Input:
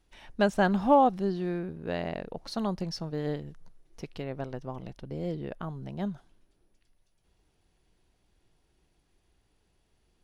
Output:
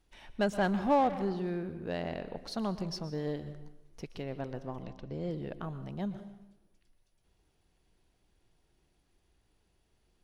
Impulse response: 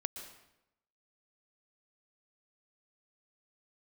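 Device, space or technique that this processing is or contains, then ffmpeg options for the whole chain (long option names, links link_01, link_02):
saturated reverb return: -filter_complex "[0:a]asplit=2[link_01][link_02];[1:a]atrim=start_sample=2205[link_03];[link_02][link_03]afir=irnorm=-1:irlink=0,asoftclip=type=tanh:threshold=-27dB,volume=1dB[link_04];[link_01][link_04]amix=inputs=2:normalize=0,asettb=1/sr,asplit=3[link_05][link_06][link_07];[link_05]atrim=end=4.844[link_08];[link_06]atrim=start=4.84:end=5.31,asetpts=PTS-STARTPTS,afade=type=in:duration=0.004:curve=qsin,afade=type=out:start_time=0.466:duration=0.004:curve=qsin,lowpass=frequency=7400:width=0.5412,lowpass=frequency=7400:width=1.3066[link_09];[link_07]atrim=start=5.306[link_10];[link_08][link_09]acrossfade=duration=0.004:curve1=hsin:curve2=qsin[link_11];[link_11][link_10]acrossfade=duration=0.004:curve1=qsin:curve2=hsin,volume=-8dB"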